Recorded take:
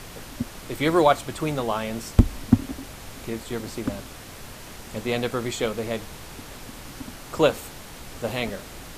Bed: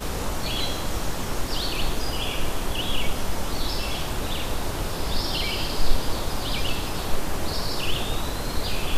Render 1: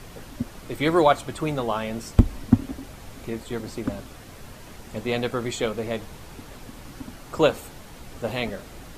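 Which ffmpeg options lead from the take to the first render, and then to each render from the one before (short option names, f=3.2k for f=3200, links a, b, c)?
-af "afftdn=nr=6:nf=-42"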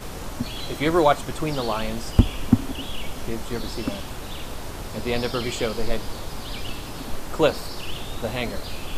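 -filter_complex "[1:a]volume=-6.5dB[a];[0:a][a]amix=inputs=2:normalize=0"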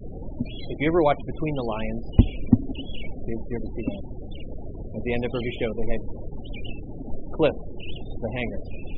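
-af "firequalizer=gain_entry='entry(310,0);entry(830,-4);entry(1300,-9);entry(2100,1);entry(4100,-9);entry(8500,-12);entry(14000,-1)':delay=0.05:min_phase=1,afftfilt=real='re*gte(hypot(re,im),0.0282)':imag='im*gte(hypot(re,im),0.0282)':win_size=1024:overlap=0.75"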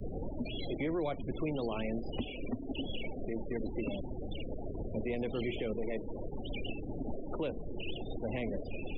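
-filter_complex "[0:a]acrossover=split=240|520|1400[a][b][c][d];[a]acompressor=threshold=-37dB:ratio=4[e];[b]acompressor=threshold=-30dB:ratio=4[f];[c]acompressor=threshold=-44dB:ratio=4[g];[d]acompressor=threshold=-43dB:ratio=4[h];[e][f][g][h]amix=inputs=4:normalize=0,alimiter=level_in=2.5dB:limit=-24dB:level=0:latency=1:release=24,volume=-2.5dB"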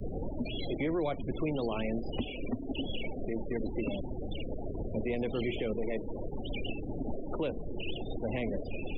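-af "volume=2.5dB"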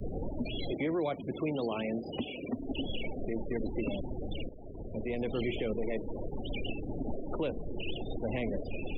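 -filter_complex "[0:a]asettb=1/sr,asplit=3[a][b][c];[a]atrim=end=0.724[d];[b]atrim=start=0.72:end=2.58,asetpts=PTS-STARTPTS,afade=t=in:d=0.004:c=qsin,afade=t=out:st=1.856:d=0.004:c=qsin,highpass=130[e];[c]atrim=start=2.576[f];[d][e]acrossfade=d=0.004:c1=hsin:c2=qsin[g];[g][f]acrossfade=d=0.004:c1=qsin:c2=hsin,asplit=2[h][i];[h]atrim=end=4.49,asetpts=PTS-STARTPTS,afade=t=out:st=4.486:d=0.004:c=hsin:silence=0.188365[j];[i]atrim=start=4.49,asetpts=PTS-STARTPTS,afade=t=in:d=0.84:silence=0.188365[k];[j][k]concat=n=2:v=0:a=1"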